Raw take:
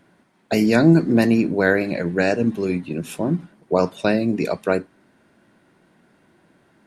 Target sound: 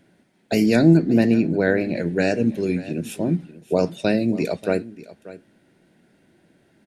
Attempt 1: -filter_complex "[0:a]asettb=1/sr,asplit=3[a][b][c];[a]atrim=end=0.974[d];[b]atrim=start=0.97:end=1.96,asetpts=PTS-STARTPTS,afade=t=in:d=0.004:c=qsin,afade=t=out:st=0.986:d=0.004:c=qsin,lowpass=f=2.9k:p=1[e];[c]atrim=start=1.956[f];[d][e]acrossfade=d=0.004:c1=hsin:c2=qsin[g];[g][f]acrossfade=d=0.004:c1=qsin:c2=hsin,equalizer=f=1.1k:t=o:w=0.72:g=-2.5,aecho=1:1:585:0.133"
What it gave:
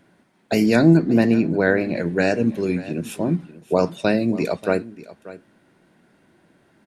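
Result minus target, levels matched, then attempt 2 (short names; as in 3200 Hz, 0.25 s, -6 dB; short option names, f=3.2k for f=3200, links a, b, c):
1000 Hz band +3.5 dB
-filter_complex "[0:a]asettb=1/sr,asplit=3[a][b][c];[a]atrim=end=0.974[d];[b]atrim=start=0.97:end=1.96,asetpts=PTS-STARTPTS,afade=t=in:d=0.004:c=qsin,afade=t=out:st=0.986:d=0.004:c=qsin,lowpass=f=2.9k:p=1[e];[c]atrim=start=1.956[f];[d][e]acrossfade=d=0.004:c1=hsin:c2=qsin[g];[g][f]acrossfade=d=0.004:c1=qsin:c2=hsin,equalizer=f=1.1k:t=o:w=0.72:g=-12,aecho=1:1:585:0.133"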